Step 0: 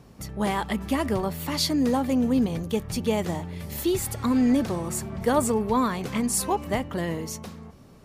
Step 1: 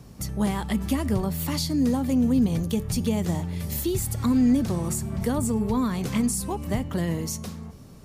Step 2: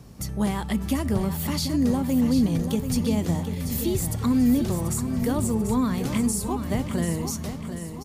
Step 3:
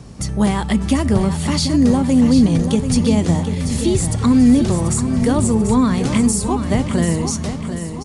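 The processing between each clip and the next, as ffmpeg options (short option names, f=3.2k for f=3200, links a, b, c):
-filter_complex "[0:a]bass=f=250:g=6,treble=f=4k:g=7,acrossover=split=280[a][b];[b]acompressor=threshold=-29dB:ratio=4[c];[a][c]amix=inputs=2:normalize=0,bandreject=f=434.8:t=h:w=4,bandreject=f=869.6:t=h:w=4,bandreject=f=1.3044k:t=h:w=4,bandreject=f=1.7392k:t=h:w=4,bandreject=f=2.174k:t=h:w=4,bandreject=f=2.6088k:t=h:w=4,bandreject=f=3.0436k:t=h:w=4,bandreject=f=3.4784k:t=h:w=4,bandreject=f=3.9132k:t=h:w=4,bandreject=f=4.348k:t=h:w=4,bandreject=f=4.7828k:t=h:w=4,bandreject=f=5.2176k:t=h:w=4,bandreject=f=5.6524k:t=h:w=4,bandreject=f=6.0872k:t=h:w=4,bandreject=f=6.522k:t=h:w=4,bandreject=f=6.9568k:t=h:w=4,bandreject=f=7.3916k:t=h:w=4,bandreject=f=7.8264k:t=h:w=4,bandreject=f=8.2612k:t=h:w=4,bandreject=f=8.696k:t=h:w=4,bandreject=f=9.1308k:t=h:w=4,bandreject=f=9.5656k:t=h:w=4,bandreject=f=10.0004k:t=h:w=4,bandreject=f=10.4352k:t=h:w=4,bandreject=f=10.87k:t=h:w=4,bandreject=f=11.3048k:t=h:w=4,bandreject=f=11.7396k:t=h:w=4,bandreject=f=12.1744k:t=h:w=4,bandreject=f=12.6092k:t=h:w=4,bandreject=f=13.044k:t=h:w=4,bandreject=f=13.4788k:t=h:w=4,bandreject=f=13.9136k:t=h:w=4,bandreject=f=14.3484k:t=h:w=4,bandreject=f=14.7832k:t=h:w=4"
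-af "aecho=1:1:739|1478|2217|2956|3695:0.355|0.167|0.0784|0.0368|0.0173"
-af "aresample=22050,aresample=44100,volume=8.5dB"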